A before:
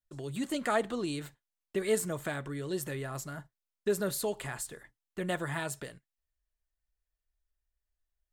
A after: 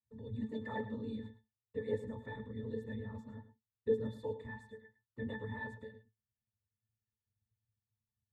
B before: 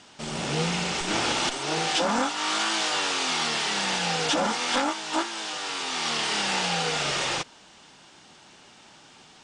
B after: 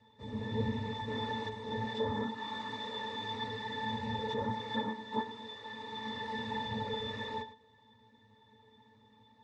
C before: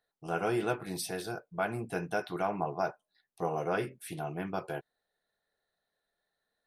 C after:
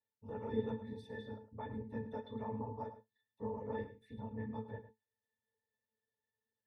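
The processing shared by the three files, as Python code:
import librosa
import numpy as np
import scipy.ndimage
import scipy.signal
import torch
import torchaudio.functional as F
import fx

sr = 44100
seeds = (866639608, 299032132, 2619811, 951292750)

y = fx.whisperise(x, sr, seeds[0])
y = fx.octave_resonator(y, sr, note='A', decay_s=0.15)
y = y + 10.0 ** (-13.5 / 20.0) * np.pad(y, (int(107 * sr / 1000.0), 0))[:len(y)]
y = F.gain(torch.from_numpy(y), 3.0).numpy()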